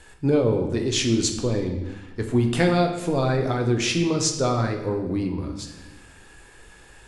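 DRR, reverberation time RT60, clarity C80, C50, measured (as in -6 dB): 3.0 dB, 1.1 s, 9.0 dB, 7.0 dB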